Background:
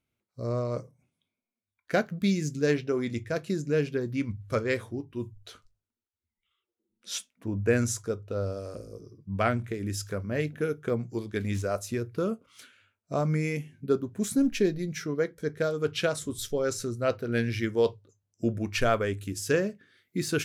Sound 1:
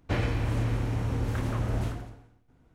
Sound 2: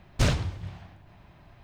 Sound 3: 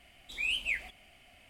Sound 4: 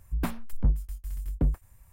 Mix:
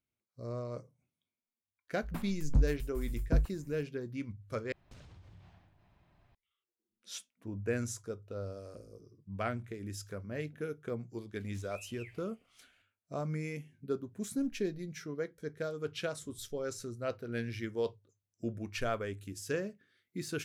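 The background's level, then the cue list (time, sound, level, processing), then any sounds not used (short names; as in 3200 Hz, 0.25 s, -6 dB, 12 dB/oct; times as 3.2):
background -9.5 dB
1.91 add 4 -3 dB + opening faded in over 0.64 s
4.72 replace with 2 -14 dB + compressor 8:1, threshold -37 dBFS
11.33 add 3 -17 dB + limiter -26.5 dBFS
not used: 1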